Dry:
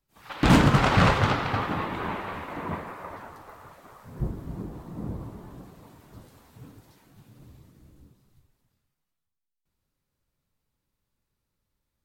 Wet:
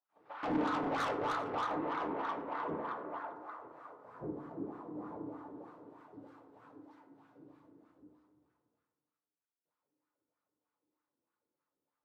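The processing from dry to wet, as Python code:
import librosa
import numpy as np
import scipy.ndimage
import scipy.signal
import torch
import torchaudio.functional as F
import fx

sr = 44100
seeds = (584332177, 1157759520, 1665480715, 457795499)

p1 = fx.highpass(x, sr, hz=180.0, slope=6)
p2 = fx.high_shelf(p1, sr, hz=10000.0, db=-4.0)
p3 = fx.rider(p2, sr, range_db=5, speed_s=0.5)
p4 = p2 + F.gain(torch.from_numpy(p3), 0.0).numpy()
p5 = fx.wah_lfo(p4, sr, hz=3.2, low_hz=330.0, high_hz=1300.0, q=2.8)
p6 = 10.0 ** (-27.0 / 20.0) * np.tanh(p5 / 10.0 ** (-27.0 / 20.0))
p7 = p6 + fx.echo_single(p6, sr, ms=393, db=-19.0, dry=0)
p8 = fx.rev_fdn(p7, sr, rt60_s=0.88, lf_ratio=1.3, hf_ratio=0.35, size_ms=20.0, drr_db=4.5)
y = F.gain(torch.from_numpy(p8), -5.5).numpy()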